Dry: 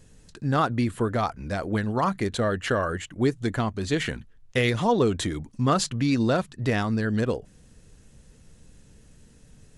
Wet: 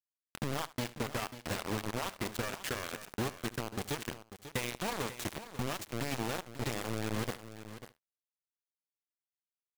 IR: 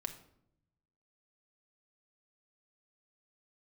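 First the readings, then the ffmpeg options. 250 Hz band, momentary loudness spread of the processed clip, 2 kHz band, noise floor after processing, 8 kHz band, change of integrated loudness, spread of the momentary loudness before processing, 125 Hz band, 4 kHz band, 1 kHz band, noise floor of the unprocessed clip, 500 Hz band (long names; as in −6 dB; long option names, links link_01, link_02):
−14.0 dB, 8 LU, −9.0 dB, below −85 dBFS, −5.0 dB, −12.0 dB, 7 LU, −13.5 dB, −7.0 dB, −12.0 dB, −54 dBFS, −13.5 dB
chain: -filter_complex "[0:a]acompressor=threshold=-37dB:ratio=16,acrusher=bits=5:mix=0:aa=0.000001,aecho=1:1:74|148:0.15|0.0239,asplit=2[link_01][link_02];[1:a]atrim=start_sample=2205,asetrate=22932,aresample=44100[link_03];[link_02][link_03]afir=irnorm=-1:irlink=0,volume=-15.5dB[link_04];[link_01][link_04]amix=inputs=2:normalize=0,aeval=exprs='sgn(val(0))*max(abs(val(0))-0.00211,0)':channel_layout=same,asplit=2[link_05][link_06];[link_06]aecho=0:1:542:0.237[link_07];[link_05][link_07]amix=inputs=2:normalize=0,volume=1.5dB"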